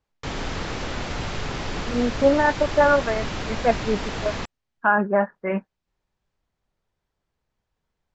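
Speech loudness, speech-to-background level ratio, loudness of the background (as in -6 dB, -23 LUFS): -22.5 LUFS, 8.0 dB, -30.5 LUFS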